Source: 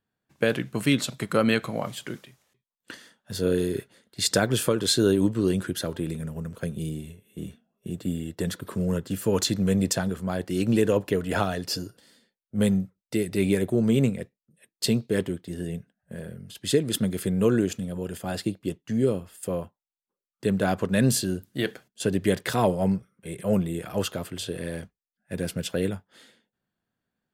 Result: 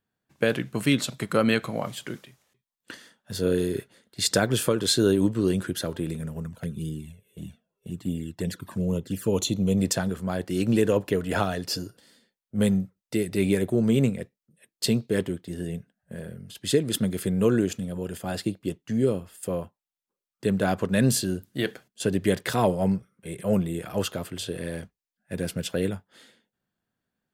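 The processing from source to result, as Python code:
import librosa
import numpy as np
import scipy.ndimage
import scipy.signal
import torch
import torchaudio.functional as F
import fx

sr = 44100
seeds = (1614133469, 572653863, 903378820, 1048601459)

y = fx.env_flanger(x, sr, rest_ms=2.5, full_db=-23.0, at=(6.45, 9.76), fade=0.02)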